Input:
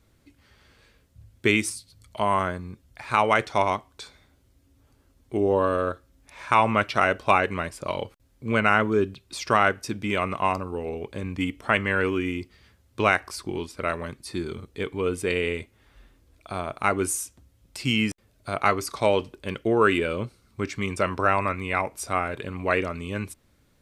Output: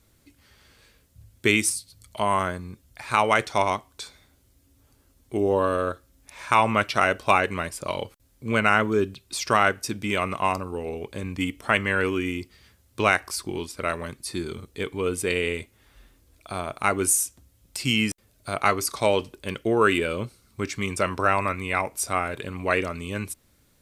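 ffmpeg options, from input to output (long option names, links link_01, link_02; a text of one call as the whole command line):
ffmpeg -i in.wav -af "aemphasis=mode=production:type=cd" out.wav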